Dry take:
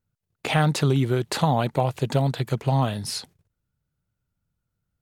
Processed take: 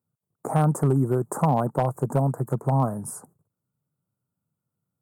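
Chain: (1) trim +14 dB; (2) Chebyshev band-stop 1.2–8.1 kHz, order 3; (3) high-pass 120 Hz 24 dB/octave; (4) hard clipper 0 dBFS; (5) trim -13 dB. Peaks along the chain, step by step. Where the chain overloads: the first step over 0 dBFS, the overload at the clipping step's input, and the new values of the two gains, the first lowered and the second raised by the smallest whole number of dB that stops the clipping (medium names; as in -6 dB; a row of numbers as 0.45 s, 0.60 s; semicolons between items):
+6.0 dBFS, +5.5 dBFS, +5.5 dBFS, 0.0 dBFS, -13.0 dBFS; step 1, 5.5 dB; step 1 +8 dB, step 5 -7 dB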